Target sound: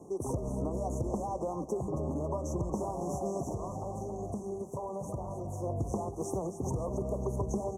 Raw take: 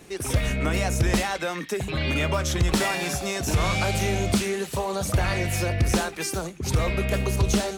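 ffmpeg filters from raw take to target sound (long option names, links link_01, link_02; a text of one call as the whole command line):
ffmpeg -i in.wav -filter_complex "[0:a]highpass=frequency=140:poles=1,aemphasis=mode=reproduction:type=75fm,acompressor=threshold=-30dB:ratio=6,asettb=1/sr,asplit=3[link_01][link_02][link_03];[link_01]atrim=end=3.434[link_04];[link_02]atrim=start=3.43:end=5.64,asetpts=PTS-STARTPTS,afade=type=in:duration=0.004:curve=qsin,afade=type=out:start_time=2.206:duration=0.004:curve=qsin,flanger=delay=0.8:depth=7.8:regen=-77:speed=1:shape=sinusoidal[link_05];[link_03]atrim=start=5.636[link_06];[link_04][link_05]acrossfade=duration=0.004:curve1=hsin:curve2=qsin[link_07];[link_07][link_06]acrossfade=duration=0.004:curve1=qsin:curve2=hsin,asuperstop=centerf=2600:order=20:qfactor=0.54,aecho=1:1:274|548|822|1096|1370:0.316|0.152|0.0729|0.035|0.0168" out.wav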